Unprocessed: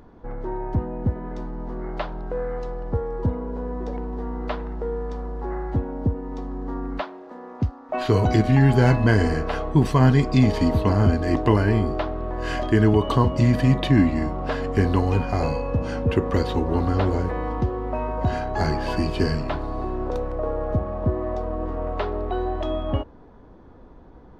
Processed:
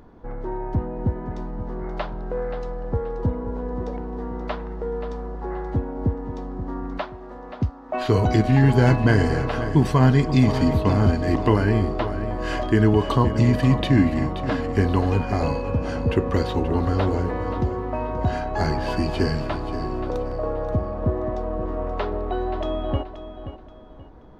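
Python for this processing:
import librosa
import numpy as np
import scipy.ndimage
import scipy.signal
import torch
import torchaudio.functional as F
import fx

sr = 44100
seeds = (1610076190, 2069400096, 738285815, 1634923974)

y = fx.echo_feedback(x, sr, ms=529, feedback_pct=31, wet_db=-11.5)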